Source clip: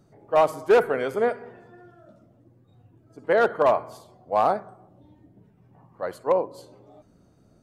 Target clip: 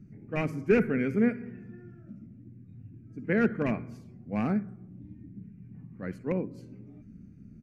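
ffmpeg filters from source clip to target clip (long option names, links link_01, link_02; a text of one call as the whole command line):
ffmpeg -i in.wav -af "firequalizer=gain_entry='entry(140,0);entry(210,6);entry(320,-7);entry(600,-25);entry(980,-28);entry(1500,-14);entry(2400,-5);entry(3400,-28);entry(5600,-16);entry(8100,-24)':delay=0.05:min_phase=1,volume=8dB" out.wav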